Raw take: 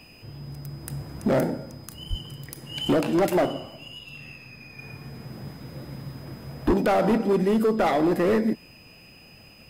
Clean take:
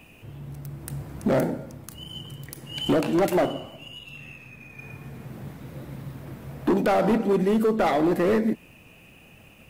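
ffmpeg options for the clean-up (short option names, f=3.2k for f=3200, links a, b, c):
-filter_complex "[0:a]bandreject=f=5k:w=30,asplit=3[a][b][c];[a]afade=t=out:st=2.09:d=0.02[d];[b]highpass=f=140:w=0.5412,highpass=f=140:w=1.3066,afade=t=in:st=2.09:d=0.02,afade=t=out:st=2.21:d=0.02[e];[c]afade=t=in:st=2.21:d=0.02[f];[d][e][f]amix=inputs=3:normalize=0,asplit=3[g][h][i];[g]afade=t=out:st=6.66:d=0.02[j];[h]highpass=f=140:w=0.5412,highpass=f=140:w=1.3066,afade=t=in:st=6.66:d=0.02,afade=t=out:st=6.78:d=0.02[k];[i]afade=t=in:st=6.78:d=0.02[l];[j][k][l]amix=inputs=3:normalize=0"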